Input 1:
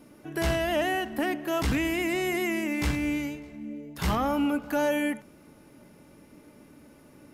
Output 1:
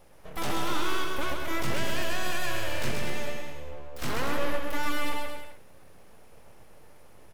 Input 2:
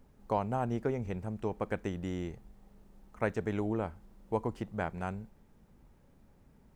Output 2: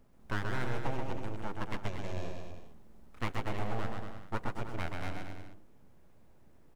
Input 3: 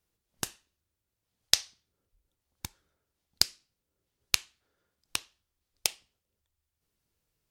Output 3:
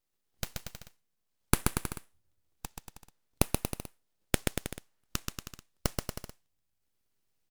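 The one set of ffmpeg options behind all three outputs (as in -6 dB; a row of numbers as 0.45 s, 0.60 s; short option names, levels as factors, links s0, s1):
-af "aeval=exprs='abs(val(0))':c=same,aecho=1:1:130|234|317.2|383.8|437:0.631|0.398|0.251|0.158|0.1,volume=0.841"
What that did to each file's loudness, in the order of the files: -4.0 LU, -3.5 LU, -5.0 LU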